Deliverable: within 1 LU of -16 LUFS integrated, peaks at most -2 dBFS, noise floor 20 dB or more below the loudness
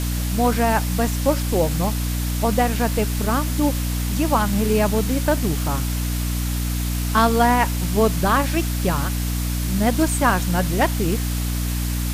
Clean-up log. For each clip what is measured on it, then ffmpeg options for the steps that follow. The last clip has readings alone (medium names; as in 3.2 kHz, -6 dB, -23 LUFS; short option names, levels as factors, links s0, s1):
hum 60 Hz; highest harmonic 300 Hz; hum level -21 dBFS; noise floor -23 dBFS; noise floor target -41 dBFS; loudness -21.0 LUFS; peak level -3.5 dBFS; loudness target -16.0 LUFS
-> -af "bandreject=f=60:t=h:w=6,bandreject=f=120:t=h:w=6,bandreject=f=180:t=h:w=6,bandreject=f=240:t=h:w=6,bandreject=f=300:t=h:w=6"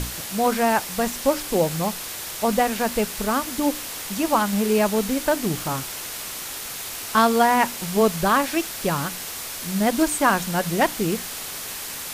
hum not found; noise floor -33 dBFS; noise floor target -43 dBFS
-> -af "afftdn=nr=10:nf=-33"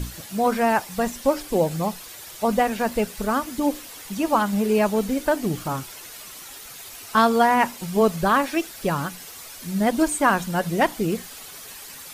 noise floor -41 dBFS; noise floor target -43 dBFS
-> -af "afftdn=nr=6:nf=-41"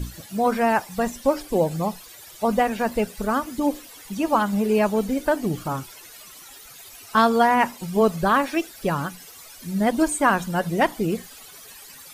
noise floor -45 dBFS; loudness -23.0 LUFS; peak level -5.5 dBFS; loudness target -16.0 LUFS
-> -af "volume=2.24,alimiter=limit=0.794:level=0:latency=1"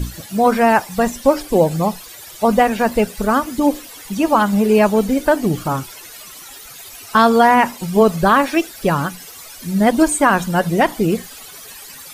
loudness -16.5 LUFS; peak level -2.0 dBFS; noise floor -37 dBFS